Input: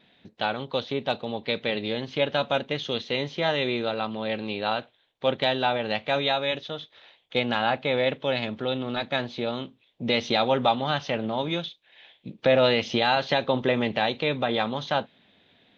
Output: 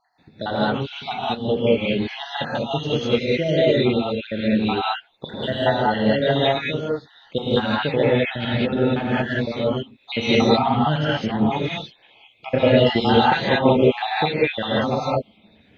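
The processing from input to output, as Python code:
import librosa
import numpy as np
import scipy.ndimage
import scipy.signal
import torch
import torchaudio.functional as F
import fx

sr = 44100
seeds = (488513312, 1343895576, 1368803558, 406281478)

y = fx.spec_dropout(x, sr, seeds[0], share_pct=65)
y = fx.low_shelf(y, sr, hz=420.0, db=10.5)
y = fx.rev_gated(y, sr, seeds[1], gate_ms=230, shape='rising', drr_db=-7.5)
y = F.gain(torch.from_numpy(y), -1.0).numpy()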